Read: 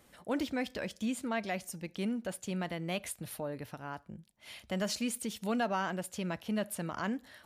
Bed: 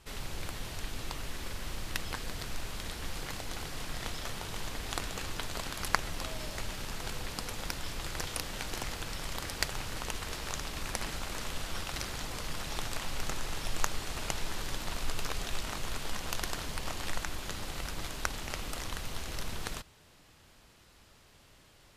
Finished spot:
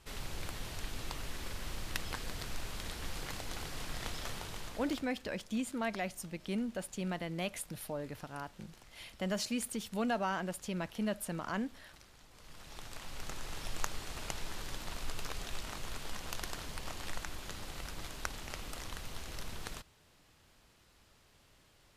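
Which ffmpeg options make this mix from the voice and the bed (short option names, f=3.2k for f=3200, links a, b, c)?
-filter_complex "[0:a]adelay=4500,volume=-1.5dB[a];[1:a]volume=13.5dB,afade=t=out:st=4.33:d=0.76:silence=0.112202,afade=t=in:st=12.31:d=1.3:silence=0.158489[b];[a][b]amix=inputs=2:normalize=0"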